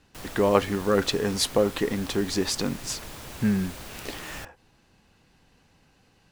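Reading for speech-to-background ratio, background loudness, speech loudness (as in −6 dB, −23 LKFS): 14.5 dB, −40.5 LKFS, −26.0 LKFS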